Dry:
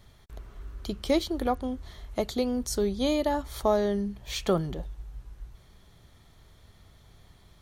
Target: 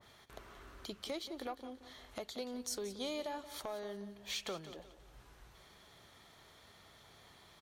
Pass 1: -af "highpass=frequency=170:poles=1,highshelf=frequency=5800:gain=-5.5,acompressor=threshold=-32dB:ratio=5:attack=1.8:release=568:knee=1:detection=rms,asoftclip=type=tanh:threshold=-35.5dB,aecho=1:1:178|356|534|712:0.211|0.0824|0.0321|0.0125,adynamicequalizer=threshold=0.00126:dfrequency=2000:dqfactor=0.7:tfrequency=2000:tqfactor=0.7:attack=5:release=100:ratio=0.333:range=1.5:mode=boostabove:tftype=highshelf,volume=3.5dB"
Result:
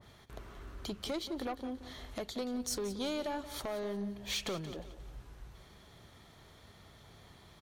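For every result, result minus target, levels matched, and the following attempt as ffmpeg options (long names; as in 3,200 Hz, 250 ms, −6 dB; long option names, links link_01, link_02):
125 Hz band +5.5 dB; downward compressor: peak gain reduction −4 dB
-af "highpass=frequency=590:poles=1,highshelf=frequency=5800:gain=-5.5,acompressor=threshold=-32dB:ratio=5:attack=1.8:release=568:knee=1:detection=rms,asoftclip=type=tanh:threshold=-35.5dB,aecho=1:1:178|356|534|712:0.211|0.0824|0.0321|0.0125,adynamicequalizer=threshold=0.00126:dfrequency=2000:dqfactor=0.7:tfrequency=2000:tqfactor=0.7:attack=5:release=100:ratio=0.333:range=1.5:mode=boostabove:tftype=highshelf,volume=3.5dB"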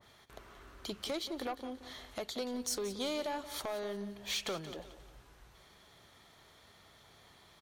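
downward compressor: peak gain reduction −6 dB
-af "highpass=frequency=590:poles=1,highshelf=frequency=5800:gain=-5.5,acompressor=threshold=-39.5dB:ratio=5:attack=1.8:release=568:knee=1:detection=rms,asoftclip=type=tanh:threshold=-35.5dB,aecho=1:1:178|356|534|712:0.211|0.0824|0.0321|0.0125,adynamicequalizer=threshold=0.00126:dfrequency=2000:dqfactor=0.7:tfrequency=2000:tqfactor=0.7:attack=5:release=100:ratio=0.333:range=1.5:mode=boostabove:tftype=highshelf,volume=3.5dB"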